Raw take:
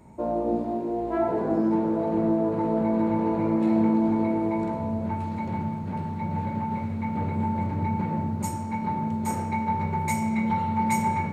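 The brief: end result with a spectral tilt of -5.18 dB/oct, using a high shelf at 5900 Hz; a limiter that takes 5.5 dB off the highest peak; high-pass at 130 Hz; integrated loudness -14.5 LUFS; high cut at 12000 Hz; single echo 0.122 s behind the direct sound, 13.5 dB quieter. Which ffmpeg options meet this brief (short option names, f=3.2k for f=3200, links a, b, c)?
-af "highpass=130,lowpass=12k,highshelf=f=5.9k:g=-8,alimiter=limit=-18dB:level=0:latency=1,aecho=1:1:122:0.211,volume=13dB"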